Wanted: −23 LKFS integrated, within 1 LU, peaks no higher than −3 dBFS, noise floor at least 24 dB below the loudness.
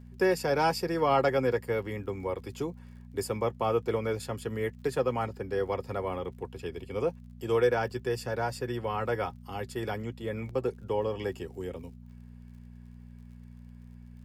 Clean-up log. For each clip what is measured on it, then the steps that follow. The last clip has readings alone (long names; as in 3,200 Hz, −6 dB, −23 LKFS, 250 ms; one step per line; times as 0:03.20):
crackle rate 46 per second; mains hum 60 Hz; hum harmonics up to 240 Hz; level of the hum −45 dBFS; integrated loudness −31.5 LKFS; sample peak −14.0 dBFS; target loudness −23.0 LKFS
→ click removal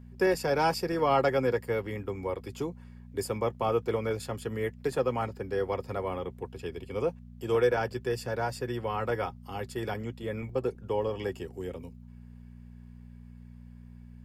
crackle rate 0.070 per second; mains hum 60 Hz; hum harmonics up to 240 Hz; level of the hum −45 dBFS
→ hum removal 60 Hz, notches 4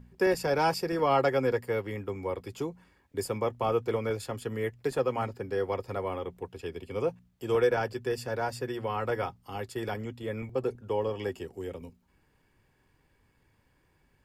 mains hum none found; integrated loudness −31.5 LKFS; sample peak −14.0 dBFS; target loudness −23.0 LKFS
→ level +8.5 dB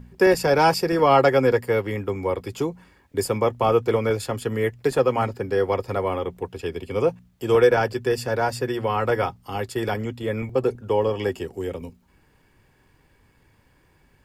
integrated loudness −23.0 LKFS; sample peak −5.5 dBFS; background noise floor −61 dBFS